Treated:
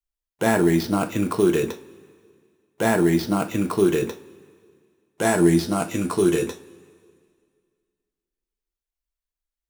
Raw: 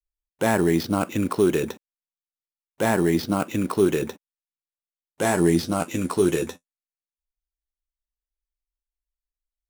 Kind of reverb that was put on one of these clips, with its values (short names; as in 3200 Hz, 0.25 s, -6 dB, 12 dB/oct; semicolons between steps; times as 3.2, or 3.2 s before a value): two-slope reverb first 0.23 s, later 2.1 s, from -22 dB, DRR 5.5 dB